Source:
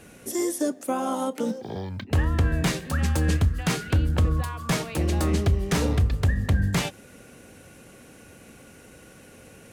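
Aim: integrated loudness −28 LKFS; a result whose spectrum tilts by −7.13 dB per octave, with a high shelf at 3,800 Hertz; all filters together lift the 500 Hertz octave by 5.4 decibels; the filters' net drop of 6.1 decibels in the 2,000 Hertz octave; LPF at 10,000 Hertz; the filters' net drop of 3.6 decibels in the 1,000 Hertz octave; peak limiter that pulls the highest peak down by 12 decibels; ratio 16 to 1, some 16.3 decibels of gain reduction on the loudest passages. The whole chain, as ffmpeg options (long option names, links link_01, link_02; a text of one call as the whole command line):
ffmpeg -i in.wav -af "lowpass=10000,equalizer=frequency=500:width_type=o:gain=8.5,equalizer=frequency=1000:width_type=o:gain=-7,equalizer=frequency=2000:width_type=o:gain=-4.5,highshelf=frequency=3800:gain=-6,acompressor=threshold=-33dB:ratio=16,volume=14dB,alimiter=limit=-18dB:level=0:latency=1" out.wav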